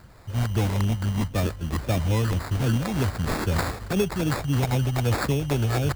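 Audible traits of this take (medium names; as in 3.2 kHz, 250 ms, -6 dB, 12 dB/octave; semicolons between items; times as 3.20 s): phasing stages 2, 3.8 Hz, lowest notch 400–2900 Hz; aliases and images of a low sample rate 3 kHz, jitter 0%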